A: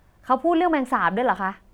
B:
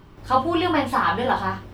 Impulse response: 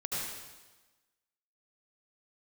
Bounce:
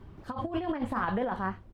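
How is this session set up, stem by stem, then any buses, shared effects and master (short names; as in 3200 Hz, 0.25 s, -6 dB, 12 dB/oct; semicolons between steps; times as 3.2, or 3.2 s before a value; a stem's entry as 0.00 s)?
-10.5 dB, 0.00 s, no send, dry
-6.0 dB, 1.3 ms, no send, tape flanging out of phase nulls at 2 Hz, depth 7.1 ms; auto duck -16 dB, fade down 1.85 s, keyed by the first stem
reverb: off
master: tilt -2 dB/oct; negative-ratio compressor -30 dBFS, ratio -0.5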